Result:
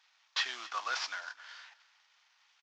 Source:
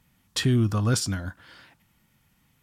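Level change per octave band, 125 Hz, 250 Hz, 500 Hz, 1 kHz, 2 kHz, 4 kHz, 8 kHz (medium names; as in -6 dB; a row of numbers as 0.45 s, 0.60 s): under -40 dB, under -35 dB, -20.5 dB, -0.5 dB, 0.0 dB, -4.0 dB, -14.0 dB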